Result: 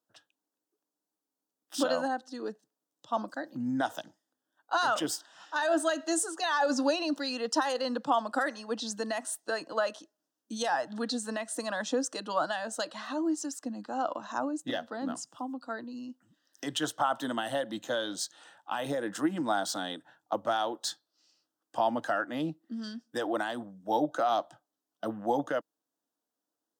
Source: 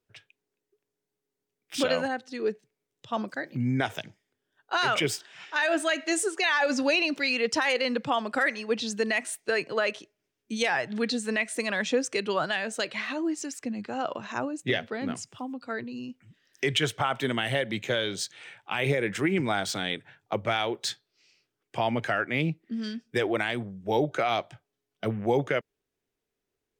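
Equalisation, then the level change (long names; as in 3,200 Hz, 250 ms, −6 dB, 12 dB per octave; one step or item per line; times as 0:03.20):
high-pass with resonance 320 Hz, resonance Q 3.9
phaser with its sweep stopped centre 940 Hz, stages 4
0.0 dB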